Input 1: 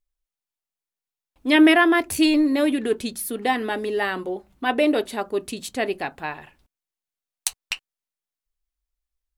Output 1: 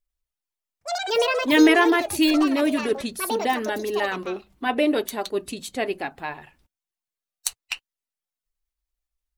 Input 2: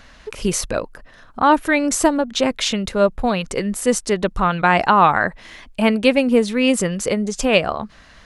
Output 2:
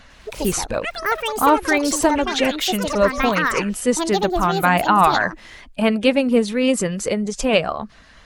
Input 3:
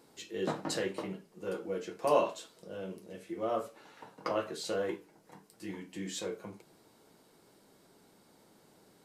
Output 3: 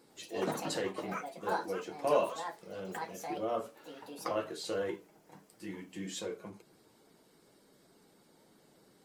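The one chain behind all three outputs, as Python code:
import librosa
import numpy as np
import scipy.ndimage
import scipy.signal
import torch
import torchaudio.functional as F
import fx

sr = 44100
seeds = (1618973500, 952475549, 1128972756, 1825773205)

y = fx.spec_quant(x, sr, step_db=15)
y = fx.echo_pitch(y, sr, ms=104, semitones=7, count=2, db_per_echo=-6.0)
y = y * 10.0 ** (-1.0 / 20.0)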